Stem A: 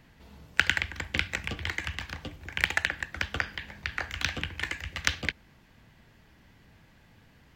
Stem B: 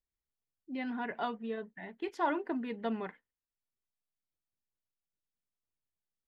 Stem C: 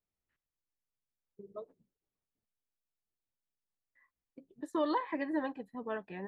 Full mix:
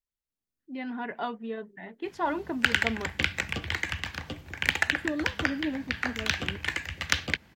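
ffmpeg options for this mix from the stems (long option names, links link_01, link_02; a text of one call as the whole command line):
ffmpeg -i stem1.wav -i stem2.wav -i stem3.wav -filter_complex "[0:a]highpass=72,asoftclip=type=tanh:threshold=-7dB,adelay=2050,volume=-3dB[link_01];[1:a]volume=-3dB,asplit=2[link_02][link_03];[2:a]equalizer=frequency=250:width_type=o:width=0.67:gain=11,equalizer=frequency=1000:width_type=o:width=0.67:gain=-11,equalizer=frequency=2500:width_type=o:width=0.67:gain=-11,adelay=300,volume=-8dB[link_04];[link_03]apad=whole_len=290071[link_05];[link_04][link_05]sidechaincompress=threshold=-49dB:ratio=8:attack=16:release=587[link_06];[link_01][link_02][link_06]amix=inputs=3:normalize=0,dynaudnorm=framelen=260:gausssize=5:maxgain=5.5dB" out.wav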